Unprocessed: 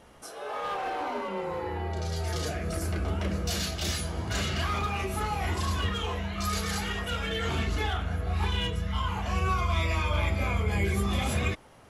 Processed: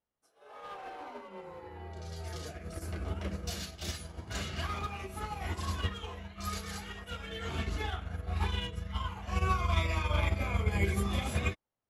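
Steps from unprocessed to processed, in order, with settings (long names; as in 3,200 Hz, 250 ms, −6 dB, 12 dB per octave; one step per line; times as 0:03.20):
expander for the loud parts 2.5 to 1, over −49 dBFS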